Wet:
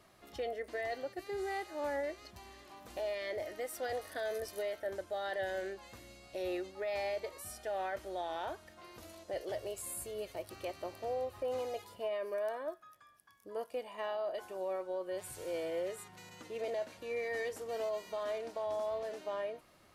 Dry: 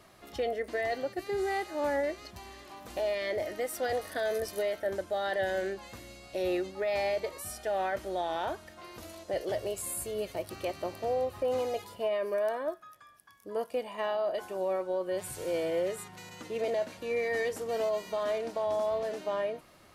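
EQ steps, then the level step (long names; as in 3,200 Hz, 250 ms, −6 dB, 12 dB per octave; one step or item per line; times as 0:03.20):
dynamic equaliser 180 Hz, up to −6 dB, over −51 dBFS, Q 1.3
−6.0 dB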